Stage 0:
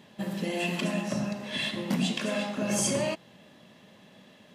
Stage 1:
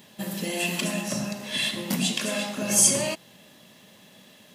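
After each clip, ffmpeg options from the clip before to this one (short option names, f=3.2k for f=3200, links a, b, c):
-af "aemphasis=mode=production:type=75kf"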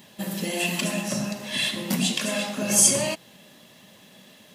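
-af "flanger=delay=1:depth=4.4:regen=-67:speed=1.3:shape=sinusoidal,volume=5.5dB"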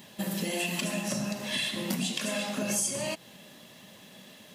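-af "acompressor=threshold=-28dB:ratio=5"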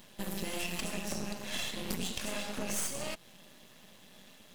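-af "aeval=exprs='max(val(0),0)':c=same,volume=-1.5dB"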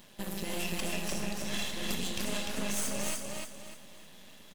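-af "aecho=1:1:298|596|894|1192|1490:0.708|0.248|0.0867|0.0304|0.0106"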